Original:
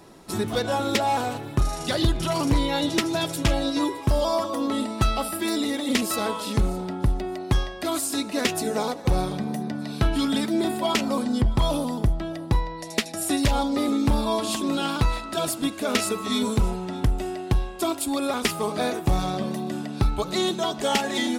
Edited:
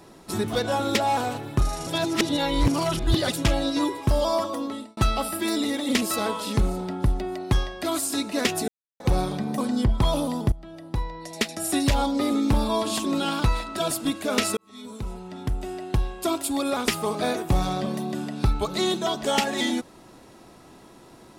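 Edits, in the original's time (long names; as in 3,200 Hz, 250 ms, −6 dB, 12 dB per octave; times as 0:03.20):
0:01.87–0:03.32: reverse
0:04.43–0:04.97: fade out
0:08.68–0:09.00: silence
0:09.58–0:11.15: remove
0:12.09–0:13.09: fade in, from −17.5 dB
0:16.14–0:17.80: fade in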